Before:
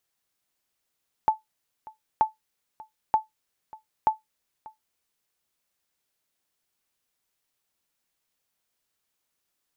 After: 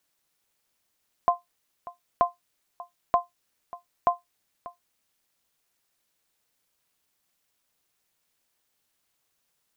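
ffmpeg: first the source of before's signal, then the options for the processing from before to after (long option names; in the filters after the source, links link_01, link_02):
-f lavfi -i "aevalsrc='0.266*(sin(2*PI*872*mod(t,0.93))*exp(-6.91*mod(t,0.93)/0.15)+0.075*sin(2*PI*872*max(mod(t,0.93)-0.59,0))*exp(-6.91*max(mod(t,0.93)-0.59,0)/0.15))':duration=3.72:sample_rate=44100"
-filter_complex "[0:a]aeval=exprs='val(0)*sin(2*PI*170*n/s)':channel_layout=same,asplit=2[link_01][link_02];[link_02]alimiter=limit=-23.5dB:level=0:latency=1,volume=2dB[link_03];[link_01][link_03]amix=inputs=2:normalize=0"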